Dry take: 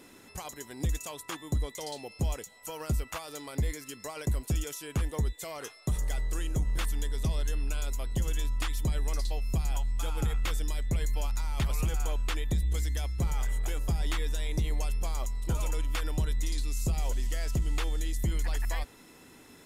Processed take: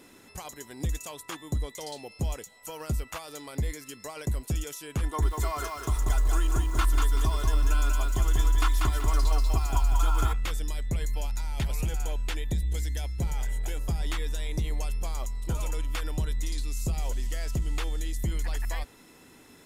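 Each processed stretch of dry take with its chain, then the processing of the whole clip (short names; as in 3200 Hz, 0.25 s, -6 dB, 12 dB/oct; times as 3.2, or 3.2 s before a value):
5.03–10.33 band shelf 1100 Hz +9.5 dB 1 oct + comb 2.9 ms, depth 68% + lo-fi delay 0.19 s, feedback 35%, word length 8-bit, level -3 dB
11.18–13.79 bell 1200 Hz -8.5 dB 0.21 oct + notch 1100 Hz, Q 17
whole clip: dry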